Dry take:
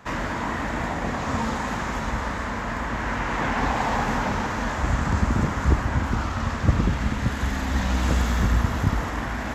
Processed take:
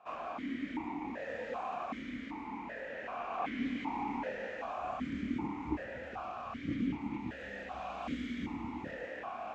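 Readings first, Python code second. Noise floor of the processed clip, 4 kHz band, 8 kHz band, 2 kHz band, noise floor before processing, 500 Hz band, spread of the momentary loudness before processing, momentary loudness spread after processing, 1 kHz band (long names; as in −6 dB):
−45 dBFS, −16.5 dB, below −25 dB, −15.5 dB, −29 dBFS, −10.5 dB, 5 LU, 6 LU, −12.5 dB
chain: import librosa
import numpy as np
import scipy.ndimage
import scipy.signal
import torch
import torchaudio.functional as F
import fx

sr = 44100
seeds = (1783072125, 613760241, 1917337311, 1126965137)

y = fx.chorus_voices(x, sr, voices=6, hz=1.2, base_ms=27, depth_ms=3.0, mix_pct=40)
y = fx.vowel_held(y, sr, hz=2.6)
y = y * librosa.db_to_amplitude(2.0)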